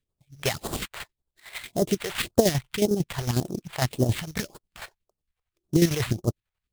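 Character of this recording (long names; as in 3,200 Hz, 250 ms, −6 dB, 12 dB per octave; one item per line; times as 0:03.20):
chopped level 11 Hz, depth 60%, duty 40%
aliases and images of a low sample rate 5,900 Hz, jitter 20%
phaser sweep stages 2, 1.8 Hz, lowest notch 240–2,200 Hz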